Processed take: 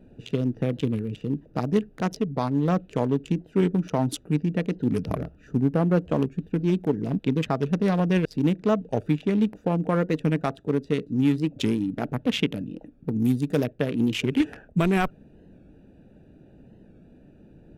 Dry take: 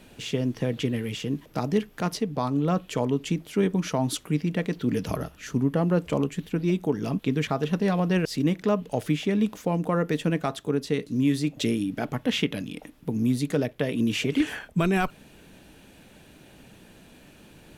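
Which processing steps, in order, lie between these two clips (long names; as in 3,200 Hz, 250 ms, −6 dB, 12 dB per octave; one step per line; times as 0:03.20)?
adaptive Wiener filter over 41 samples
0:13.19–0:13.64: high-shelf EQ 5,800 Hz +11.5 dB
wow of a warped record 45 rpm, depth 100 cents
level +2 dB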